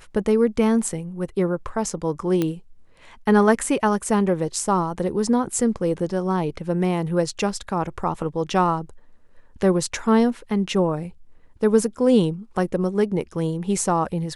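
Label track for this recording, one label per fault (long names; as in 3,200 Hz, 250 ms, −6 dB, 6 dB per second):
2.420000	2.420000	click −10 dBFS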